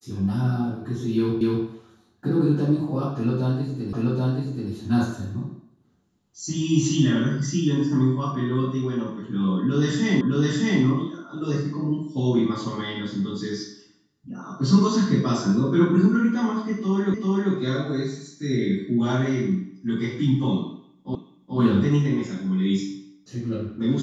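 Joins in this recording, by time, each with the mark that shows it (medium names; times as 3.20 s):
1.41 s: repeat of the last 0.25 s
3.93 s: repeat of the last 0.78 s
10.21 s: repeat of the last 0.61 s
17.14 s: repeat of the last 0.39 s
21.15 s: repeat of the last 0.43 s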